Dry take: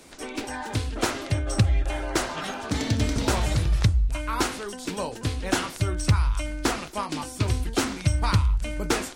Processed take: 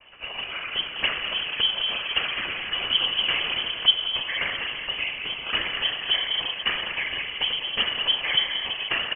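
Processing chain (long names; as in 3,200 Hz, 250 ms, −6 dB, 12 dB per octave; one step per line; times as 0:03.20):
slap from a distant wall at 35 metres, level −9 dB
four-comb reverb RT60 2.7 s, combs from 32 ms, DRR 3 dB
cochlear-implant simulation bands 16
voice inversion scrambler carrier 3,200 Hz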